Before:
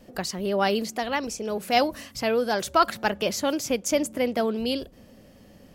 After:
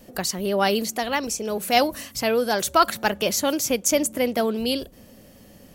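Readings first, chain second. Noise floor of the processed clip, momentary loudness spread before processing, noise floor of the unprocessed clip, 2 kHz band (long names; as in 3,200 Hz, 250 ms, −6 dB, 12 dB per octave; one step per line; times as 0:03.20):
−49 dBFS, 7 LU, −52 dBFS, +3.0 dB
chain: high-shelf EQ 6,800 Hz +11 dB
notch filter 5,000 Hz, Q 19
level +2 dB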